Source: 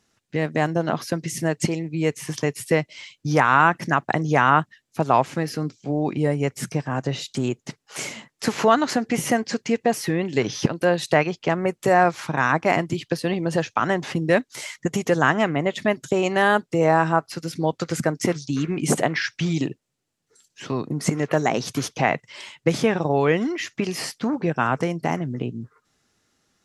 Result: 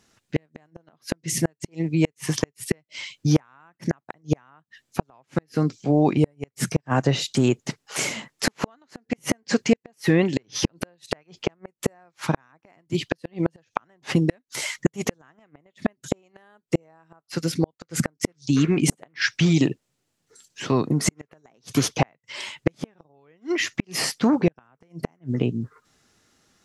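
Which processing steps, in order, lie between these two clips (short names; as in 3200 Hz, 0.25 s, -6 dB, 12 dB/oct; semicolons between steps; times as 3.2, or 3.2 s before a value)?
flipped gate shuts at -12 dBFS, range -42 dB; gain +5 dB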